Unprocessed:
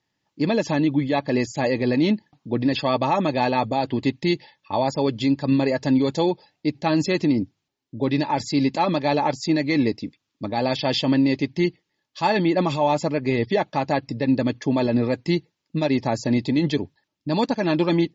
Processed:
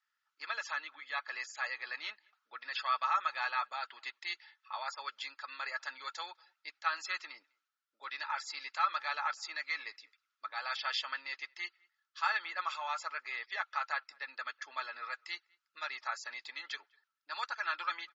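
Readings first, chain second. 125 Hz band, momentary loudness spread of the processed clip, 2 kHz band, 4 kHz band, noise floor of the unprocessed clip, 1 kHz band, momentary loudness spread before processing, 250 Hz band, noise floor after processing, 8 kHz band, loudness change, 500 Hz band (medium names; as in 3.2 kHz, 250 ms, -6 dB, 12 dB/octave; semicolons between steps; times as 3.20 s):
under -40 dB, 12 LU, -5.0 dB, -10.5 dB, -79 dBFS, -11.0 dB, 7 LU, under -40 dB, under -85 dBFS, no reading, -15.0 dB, -31.0 dB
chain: ladder high-pass 1.3 kHz, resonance 85%; speakerphone echo 200 ms, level -29 dB; trim +1.5 dB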